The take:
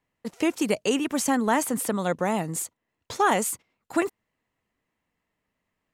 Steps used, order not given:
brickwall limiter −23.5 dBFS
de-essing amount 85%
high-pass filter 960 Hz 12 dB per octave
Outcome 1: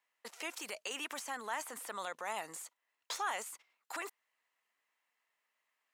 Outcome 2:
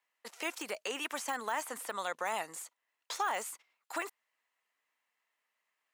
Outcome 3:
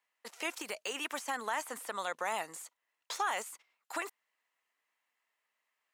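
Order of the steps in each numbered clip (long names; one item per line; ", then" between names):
brickwall limiter, then de-essing, then high-pass filter
de-essing, then high-pass filter, then brickwall limiter
high-pass filter, then brickwall limiter, then de-essing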